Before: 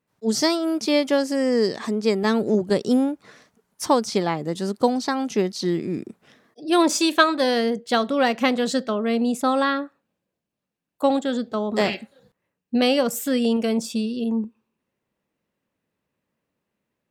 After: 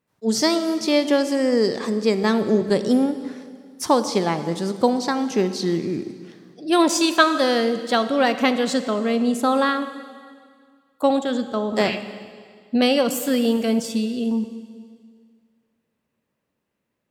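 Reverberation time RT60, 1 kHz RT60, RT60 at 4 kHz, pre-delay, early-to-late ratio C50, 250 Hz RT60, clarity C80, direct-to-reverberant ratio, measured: 1.9 s, 1.9 s, 1.9 s, 29 ms, 11.0 dB, 2.0 s, 12.0 dB, 10.5 dB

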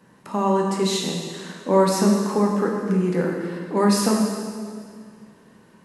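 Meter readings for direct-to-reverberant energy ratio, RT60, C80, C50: -1.0 dB, 2.0 s, 3.5 dB, 2.0 dB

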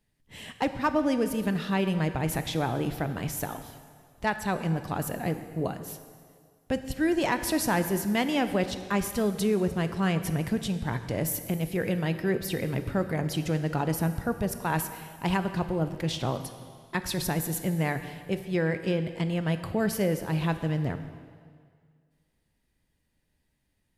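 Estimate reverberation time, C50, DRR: 1.9 s, 10.5 dB, 9.0 dB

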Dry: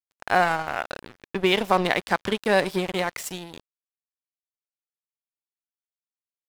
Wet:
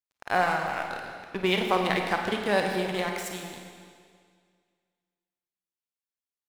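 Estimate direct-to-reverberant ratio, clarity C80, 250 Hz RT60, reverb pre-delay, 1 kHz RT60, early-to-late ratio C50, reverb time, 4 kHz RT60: 2.5 dB, 4.5 dB, 2.0 s, 32 ms, 2.0 s, 3.5 dB, 2.0 s, 1.9 s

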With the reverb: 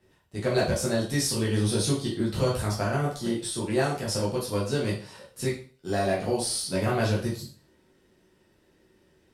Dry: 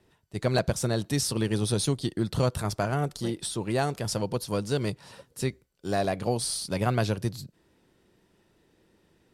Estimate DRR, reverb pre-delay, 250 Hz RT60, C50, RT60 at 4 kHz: -6.0 dB, 9 ms, 0.40 s, 6.5 dB, 0.40 s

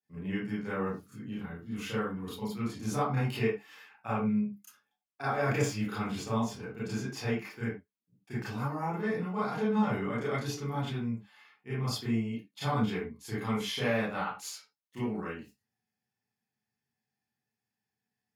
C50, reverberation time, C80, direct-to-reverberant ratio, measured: 1.0 dB, no single decay rate, 8.5 dB, -11.0 dB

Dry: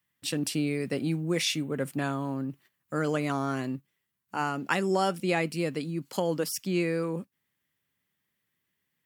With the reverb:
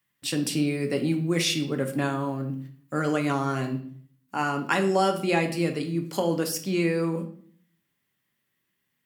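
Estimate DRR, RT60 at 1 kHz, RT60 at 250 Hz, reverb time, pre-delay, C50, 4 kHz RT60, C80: 4.0 dB, 0.50 s, 0.75 s, 0.55 s, 3 ms, 10.5 dB, 0.50 s, 14.5 dB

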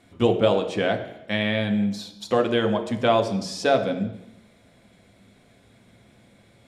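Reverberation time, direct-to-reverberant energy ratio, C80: 0.85 s, 4.0 dB, 12.0 dB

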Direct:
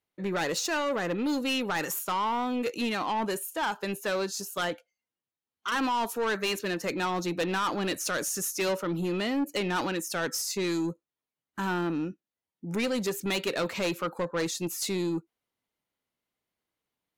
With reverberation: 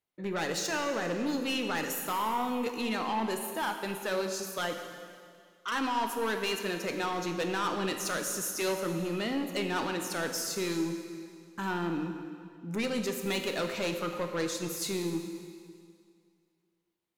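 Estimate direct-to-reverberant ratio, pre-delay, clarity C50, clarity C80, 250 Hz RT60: 5.0 dB, 5 ms, 6.5 dB, 7.5 dB, 2.2 s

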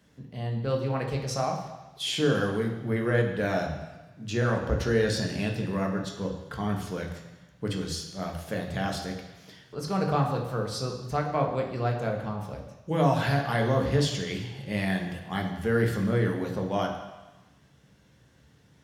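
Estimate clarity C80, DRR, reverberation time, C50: 8.0 dB, 1.5 dB, 1.1 s, 6.0 dB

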